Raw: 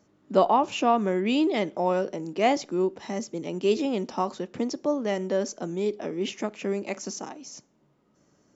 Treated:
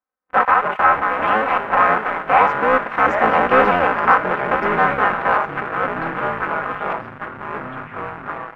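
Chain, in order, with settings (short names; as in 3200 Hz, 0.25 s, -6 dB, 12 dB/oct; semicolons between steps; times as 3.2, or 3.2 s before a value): cycle switcher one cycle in 3, inverted; Doppler pass-by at 3.33, 13 m/s, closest 3.4 m; low shelf 270 Hz -6.5 dB; notches 50/100/150/200/250 Hz; sample leveller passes 2; comb 3.9 ms, depth 86%; in parallel at +0.5 dB: vocal rider within 5 dB 2 s; on the sum: sample leveller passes 3; echoes that change speed 0.191 s, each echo -4 st, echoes 3, each echo -6 dB; EQ curve 160 Hz 0 dB, 320 Hz -3 dB, 1400 Hz +14 dB, 2600 Hz +1 dB, 4300 Hz -20 dB, 6200 Hz -26 dB; on a send: thin delay 62 ms, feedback 76%, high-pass 1900 Hz, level -15.5 dB; on the sum: gain -10 dB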